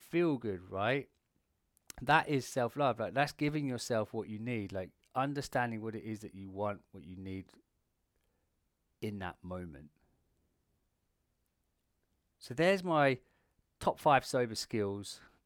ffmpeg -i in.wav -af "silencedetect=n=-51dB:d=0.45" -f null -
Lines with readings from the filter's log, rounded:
silence_start: 1.05
silence_end: 1.77 | silence_duration: 0.73
silence_start: 7.54
silence_end: 9.02 | silence_duration: 1.49
silence_start: 9.87
silence_end: 12.42 | silence_duration: 2.55
silence_start: 13.17
silence_end: 13.81 | silence_duration: 0.64